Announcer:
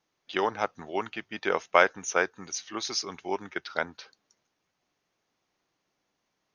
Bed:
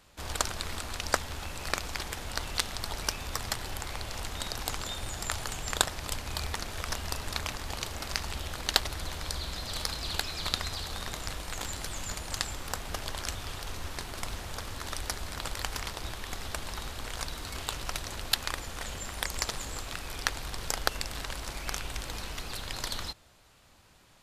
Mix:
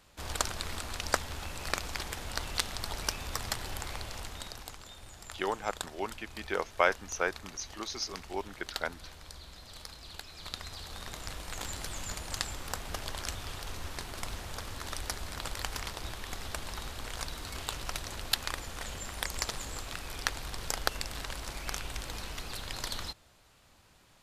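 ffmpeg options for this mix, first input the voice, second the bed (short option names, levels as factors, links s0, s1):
-filter_complex "[0:a]adelay=5050,volume=0.531[s0];[1:a]volume=2.99,afade=t=out:st=3.88:d=0.88:silence=0.266073,afade=t=in:st=10.27:d=1.45:silence=0.281838[s1];[s0][s1]amix=inputs=2:normalize=0"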